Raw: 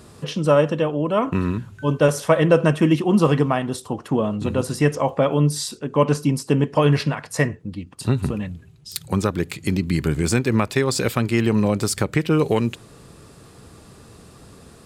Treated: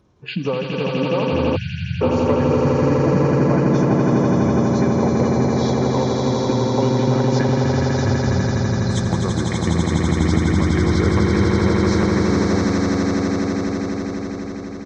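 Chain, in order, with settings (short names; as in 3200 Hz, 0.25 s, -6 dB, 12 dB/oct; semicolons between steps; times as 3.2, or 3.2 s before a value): nonlinear frequency compression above 3800 Hz 1.5:1; spectral noise reduction 21 dB; high shelf 2900 Hz -11 dB; compressor 20:1, threshold -28 dBFS, peak gain reduction 19 dB; pitch shift -2 st; hard clip -18.5 dBFS, distortion -33 dB; swelling echo 83 ms, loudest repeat 8, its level -4 dB; spectral delete 1.56–2.02, 210–1400 Hz; gain +8.5 dB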